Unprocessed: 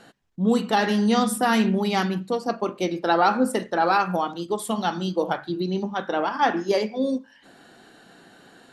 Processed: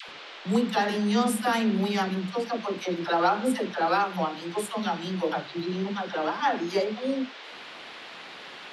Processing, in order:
noise in a band 350–3,800 Hz −40 dBFS
upward compression, threshold −35 dBFS
all-pass dispersion lows, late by 89 ms, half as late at 600 Hz
level −4 dB

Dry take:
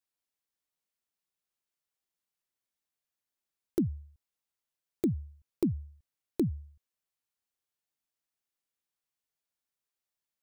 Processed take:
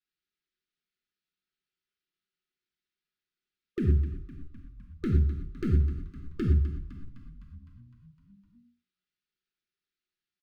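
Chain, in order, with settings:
0:03.82–0:06.42: lower of the sound and its delayed copy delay 0.79 ms
low-pass filter 4,700 Hz 24 dB per octave
comb filter 5.5 ms, depth 41%
leveller curve on the samples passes 3
compressor whose output falls as the input rises −27 dBFS, ratio −1
linear-phase brick-wall band-stop 480–1,200 Hz
tuned comb filter 130 Hz, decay 1.3 s, harmonics all, mix 40%
echo with shifted repeats 255 ms, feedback 65%, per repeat −39 Hz, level −13 dB
reverb whose tail is shaped and stops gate 140 ms flat, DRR 1.5 dB
level +6 dB

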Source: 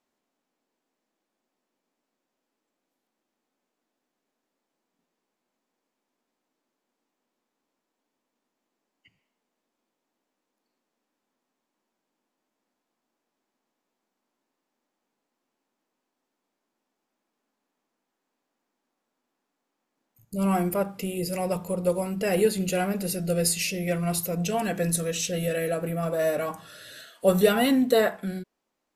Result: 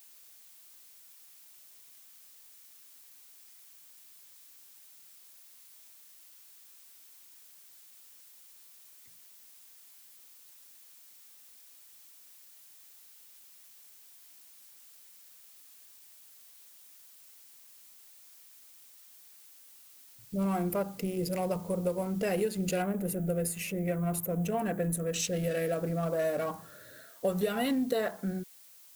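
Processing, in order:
adaptive Wiener filter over 15 samples
downward compressor 6 to 1, threshold −25 dBFS, peak gain reduction 11.5 dB
background noise blue −54 dBFS
0:22.82–0:25.14: parametric band 4,700 Hz −14.5 dB 1.1 octaves
level −1.5 dB

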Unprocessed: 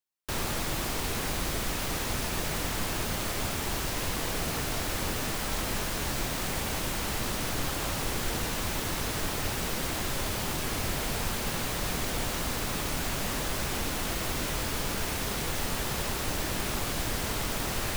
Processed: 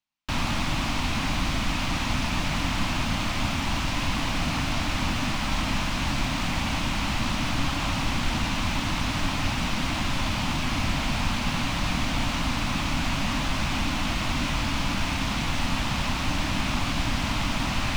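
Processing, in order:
drawn EQ curve 140 Hz 0 dB, 280 Hz +3 dB, 420 Hz −18 dB, 610 Hz −5 dB, 1,000 Hz +1 dB, 1,700 Hz −4 dB, 2,500 Hz +2 dB, 6,000 Hz −6 dB, 13,000 Hz −21 dB
level +6.5 dB

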